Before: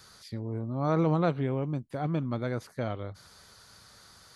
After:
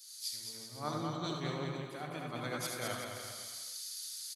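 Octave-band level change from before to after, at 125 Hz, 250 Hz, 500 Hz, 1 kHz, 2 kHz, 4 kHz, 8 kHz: -12.5 dB, -11.5 dB, -10.0 dB, -6.0 dB, -0.5 dB, +9.0 dB, no reading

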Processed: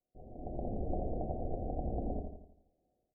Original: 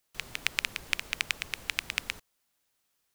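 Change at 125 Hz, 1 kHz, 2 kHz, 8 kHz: +13.0 dB, +2.5 dB, under -40 dB, under -40 dB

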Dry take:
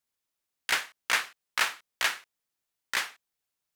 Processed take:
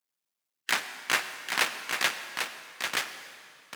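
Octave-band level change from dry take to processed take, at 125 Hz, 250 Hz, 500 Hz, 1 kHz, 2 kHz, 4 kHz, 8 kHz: no reading, +8.5 dB, +4.5 dB, +1.5 dB, +0.5 dB, +1.0 dB, +1.0 dB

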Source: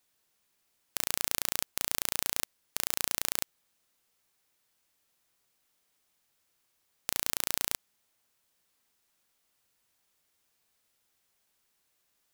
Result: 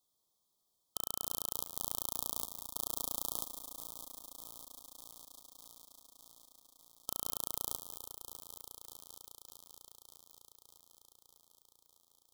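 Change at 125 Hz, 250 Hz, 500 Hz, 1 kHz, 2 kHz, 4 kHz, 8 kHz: -4.5 dB, -4.0 dB, -4.5 dB, -5.0 dB, under -40 dB, -9.0 dB, -6.5 dB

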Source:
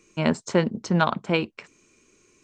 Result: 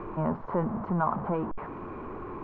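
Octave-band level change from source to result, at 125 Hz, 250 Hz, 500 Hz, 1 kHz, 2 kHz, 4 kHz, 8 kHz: -5.0 dB, -5.5 dB, -6.0 dB, -2.0 dB, -13.5 dB, under -30 dB, under -40 dB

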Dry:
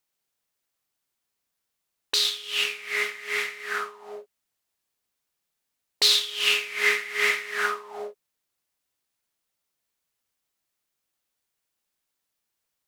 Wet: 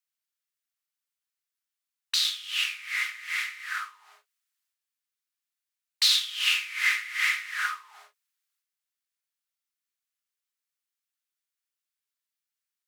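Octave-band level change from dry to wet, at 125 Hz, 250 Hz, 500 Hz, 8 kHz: no reading, under -40 dB, under -35 dB, -2.0 dB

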